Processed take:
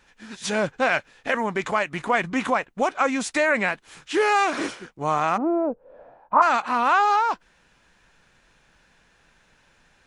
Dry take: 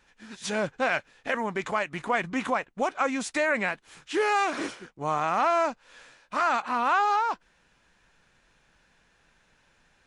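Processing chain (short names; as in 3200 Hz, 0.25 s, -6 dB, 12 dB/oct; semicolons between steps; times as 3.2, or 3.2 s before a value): 5.36–6.41 synth low-pass 310 Hz -> 980 Hz, resonance Q 6; gain +4.5 dB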